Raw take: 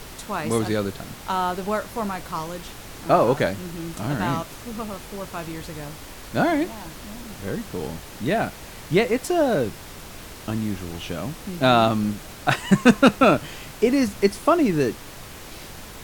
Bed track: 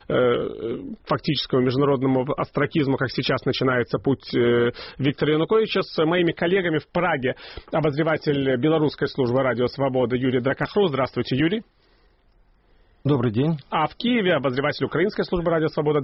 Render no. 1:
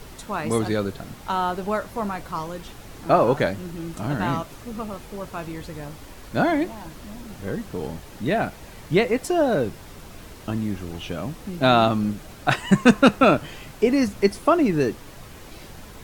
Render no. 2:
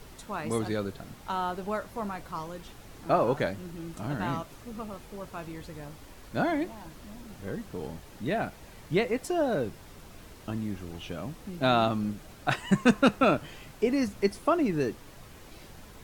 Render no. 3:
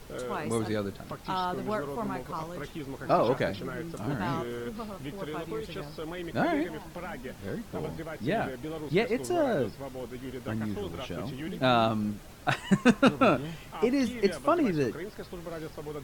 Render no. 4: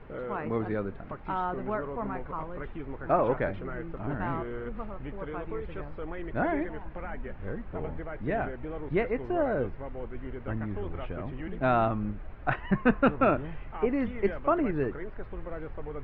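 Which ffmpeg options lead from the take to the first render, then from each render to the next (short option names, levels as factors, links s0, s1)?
-af "afftdn=nr=6:nf=-40"
-af "volume=0.447"
-filter_complex "[1:a]volume=0.126[s0];[0:a][s0]amix=inputs=2:normalize=0"
-af "lowpass=f=2200:w=0.5412,lowpass=f=2200:w=1.3066,asubboost=boost=4.5:cutoff=72"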